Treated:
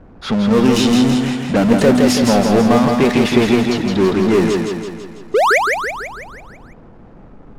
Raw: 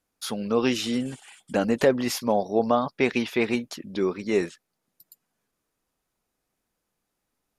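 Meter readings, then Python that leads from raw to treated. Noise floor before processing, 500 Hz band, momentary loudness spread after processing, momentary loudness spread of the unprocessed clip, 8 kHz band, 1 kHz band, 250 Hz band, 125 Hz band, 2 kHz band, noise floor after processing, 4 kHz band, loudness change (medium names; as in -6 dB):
-81 dBFS, +10.0 dB, 11 LU, 11 LU, +11.5 dB, +12.5 dB, +14.0 dB, +16.5 dB, +13.0 dB, -41 dBFS, +11.5 dB, +11.5 dB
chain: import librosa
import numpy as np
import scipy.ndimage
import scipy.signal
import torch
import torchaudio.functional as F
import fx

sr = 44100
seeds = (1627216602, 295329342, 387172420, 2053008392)

y = fx.spec_paint(x, sr, seeds[0], shape='rise', start_s=5.34, length_s=0.24, low_hz=370.0, high_hz=2500.0, level_db=-19.0)
y = fx.low_shelf(y, sr, hz=340.0, db=11.5)
y = fx.power_curve(y, sr, exponent=0.5)
y = fx.env_lowpass(y, sr, base_hz=1100.0, full_db=-9.5)
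y = fx.echo_feedback(y, sr, ms=165, feedback_pct=55, wet_db=-4.0)
y = F.gain(torch.from_numpy(y), -1.0).numpy()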